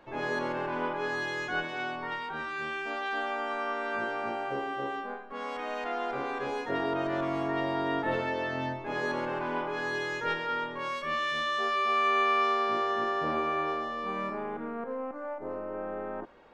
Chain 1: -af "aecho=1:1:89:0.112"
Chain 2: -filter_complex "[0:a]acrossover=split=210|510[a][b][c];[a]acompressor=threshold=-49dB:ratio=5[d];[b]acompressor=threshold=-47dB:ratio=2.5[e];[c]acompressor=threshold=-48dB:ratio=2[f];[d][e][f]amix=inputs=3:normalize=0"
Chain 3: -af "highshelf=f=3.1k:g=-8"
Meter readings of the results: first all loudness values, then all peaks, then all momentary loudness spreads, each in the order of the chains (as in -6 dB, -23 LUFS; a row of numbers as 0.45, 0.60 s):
-31.5, -40.0, -32.5 LUFS; -15.5, -27.0, -17.0 dBFS; 9, 4, 9 LU